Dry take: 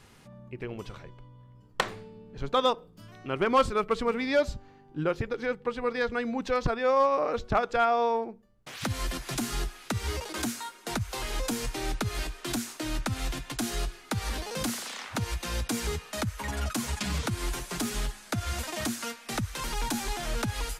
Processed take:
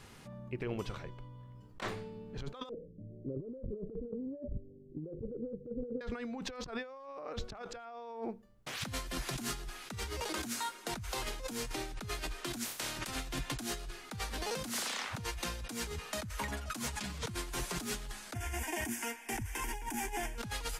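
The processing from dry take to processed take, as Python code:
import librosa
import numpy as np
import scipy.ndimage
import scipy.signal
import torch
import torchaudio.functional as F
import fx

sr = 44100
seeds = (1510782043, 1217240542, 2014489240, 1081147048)

y = fx.steep_lowpass(x, sr, hz=590.0, slope=96, at=(2.69, 6.01))
y = fx.spec_clip(y, sr, under_db=24, at=(12.64, 13.14), fade=0.02)
y = fx.fixed_phaser(y, sr, hz=830.0, stages=8, at=(18.34, 20.38))
y = fx.over_compress(y, sr, threshold_db=-36.0, ratio=-1.0)
y = y * 10.0 ** (-4.0 / 20.0)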